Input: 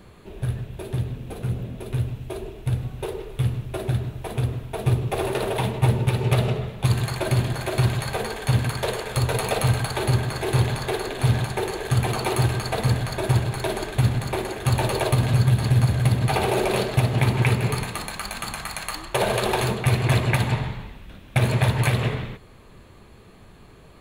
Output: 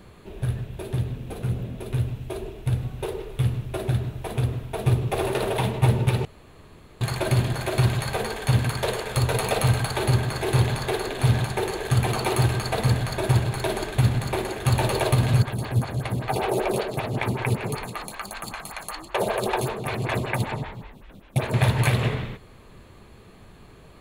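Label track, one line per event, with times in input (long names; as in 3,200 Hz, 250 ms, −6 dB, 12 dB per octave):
6.250000	7.010000	fill with room tone
15.420000	21.540000	phaser with staggered stages 5.2 Hz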